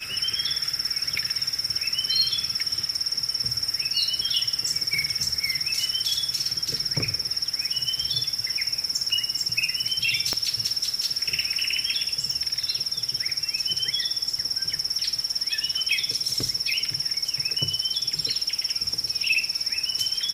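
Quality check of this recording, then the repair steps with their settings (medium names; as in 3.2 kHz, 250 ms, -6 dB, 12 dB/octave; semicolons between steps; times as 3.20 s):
10.33 s: pop -10 dBFS
12.31 s: pop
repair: de-click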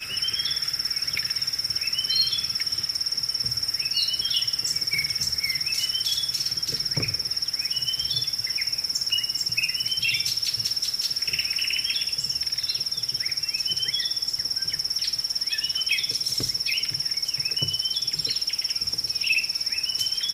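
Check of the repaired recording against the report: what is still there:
10.33 s: pop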